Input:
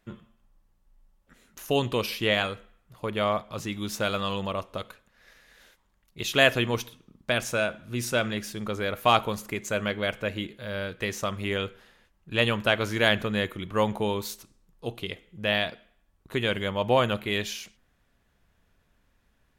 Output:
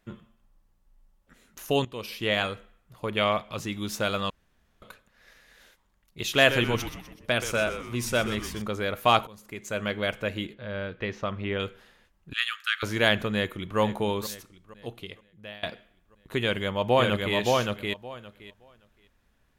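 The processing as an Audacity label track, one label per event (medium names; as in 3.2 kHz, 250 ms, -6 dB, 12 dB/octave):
1.850000	2.440000	fade in, from -17.5 dB
3.170000	3.570000	peaking EQ 2.6 kHz +8 dB 0.91 oct
4.300000	4.820000	room tone
6.220000	8.620000	frequency-shifting echo 125 ms, feedback 48%, per repeat -140 Hz, level -10.5 dB
9.270000	9.960000	fade in, from -23 dB
10.540000	11.600000	distance through air 250 m
12.330000	12.830000	rippled Chebyshev high-pass 1.2 kHz, ripple 3 dB
13.330000	13.790000	echo throw 470 ms, feedback 55%, level -13 dB
14.330000	15.630000	fade out, to -24 dB
16.410000	17.360000	echo throw 570 ms, feedback 15%, level -2 dB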